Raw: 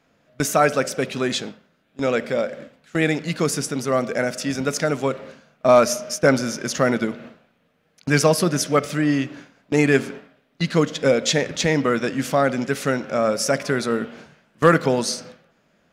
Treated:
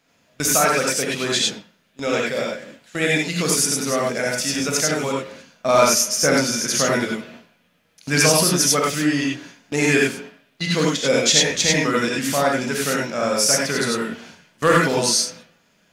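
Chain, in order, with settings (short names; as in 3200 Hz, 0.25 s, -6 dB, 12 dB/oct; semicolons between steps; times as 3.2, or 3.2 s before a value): high shelf 2300 Hz +11 dB; non-linear reverb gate 0.12 s rising, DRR -3 dB; gain -5.5 dB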